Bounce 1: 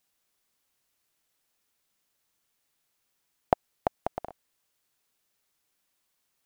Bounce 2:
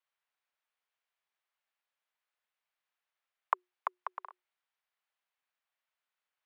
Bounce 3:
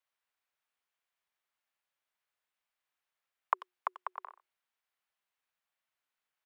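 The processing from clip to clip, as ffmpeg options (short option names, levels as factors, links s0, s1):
-filter_complex "[0:a]afreqshift=360,acrossover=split=600 3300:gain=0.0794 1 0.112[s0][s1][s2];[s0][s1][s2]amix=inputs=3:normalize=0,volume=0.531"
-filter_complex "[0:a]asplit=2[s0][s1];[s1]adelay=90,highpass=300,lowpass=3400,asoftclip=type=hard:threshold=0.1,volume=0.158[s2];[s0][s2]amix=inputs=2:normalize=0"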